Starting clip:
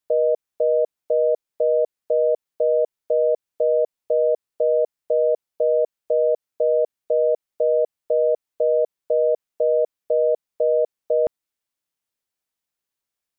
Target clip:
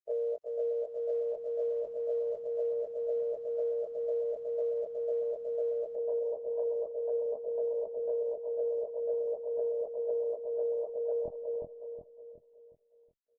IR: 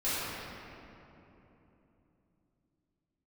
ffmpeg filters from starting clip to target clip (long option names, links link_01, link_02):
-filter_complex "[0:a]afftfilt=real='re':imag='-im':win_size=2048:overlap=0.75,acrossover=split=200[link_01][link_02];[link_01]dynaudnorm=framelen=350:gausssize=11:maxgain=10.5dB[link_03];[link_02]acrusher=bits=5:mode=log:mix=0:aa=0.000001[link_04];[link_03][link_04]amix=inputs=2:normalize=0,afftdn=noise_reduction=32:noise_floor=-37,asplit=2[link_05][link_06];[link_06]adelay=366,lowpass=frequency=830:poles=1,volume=-5dB,asplit=2[link_07][link_08];[link_08]adelay=366,lowpass=frequency=830:poles=1,volume=0.49,asplit=2[link_09][link_10];[link_10]adelay=366,lowpass=frequency=830:poles=1,volume=0.49,asplit=2[link_11][link_12];[link_12]adelay=366,lowpass=frequency=830:poles=1,volume=0.49,asplit=2[link_13][link_14];[link_14]adelay=366,lowpass=frequency=830:poles=1,volume=0.49,asplit=2[link_15][link_16];[link_16]adelay=366,lowpass=frequency=830:poles=1,volume=0.49[link_17];[link_05][link_07][link_09][link_11][link_13][link_15][link_17]amix=inputs=7:normalize=0,acompressor=threshold=-23dB:ratio=6,volume=-6.5dB" -ar 48000 -c:a libopus -b:a 16k